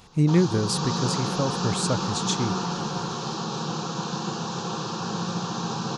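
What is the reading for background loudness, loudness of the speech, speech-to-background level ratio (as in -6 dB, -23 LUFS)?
-29.0 LUFS, -26.0 LUFS, 3.0 dB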